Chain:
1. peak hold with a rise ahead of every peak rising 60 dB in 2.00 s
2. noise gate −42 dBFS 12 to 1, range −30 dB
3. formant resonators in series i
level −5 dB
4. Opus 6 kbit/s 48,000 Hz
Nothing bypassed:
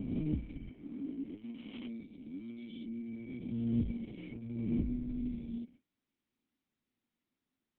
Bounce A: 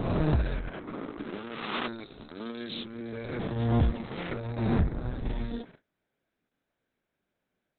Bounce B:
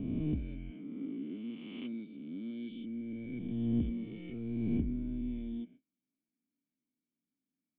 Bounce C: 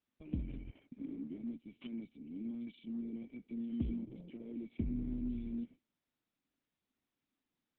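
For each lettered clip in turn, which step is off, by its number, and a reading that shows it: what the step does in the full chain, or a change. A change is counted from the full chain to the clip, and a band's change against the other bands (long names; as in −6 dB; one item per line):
3, 250 Hz band −12.5 dB
4, change in momentary loudness spread −2 LU
1, change in integrated loudness −3.0 LU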